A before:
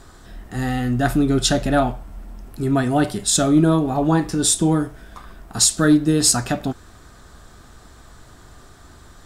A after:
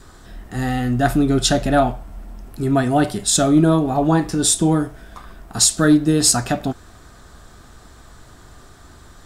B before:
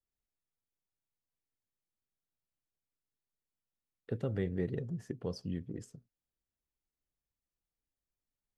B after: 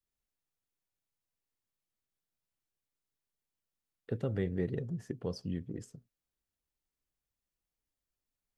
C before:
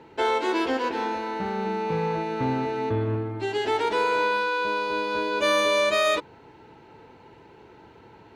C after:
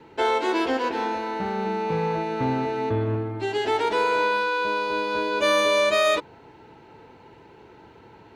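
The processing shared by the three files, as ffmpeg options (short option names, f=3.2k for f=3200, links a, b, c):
-af "adynamicequalizer=threshold=0.00891:dfrequency=690:dqfactor=5:tfrequency=690:tqfactor=5:attack=5:release=100:ratio=0.375:range=1.5:mode=boostabove:tftype=bell,volume=1dB"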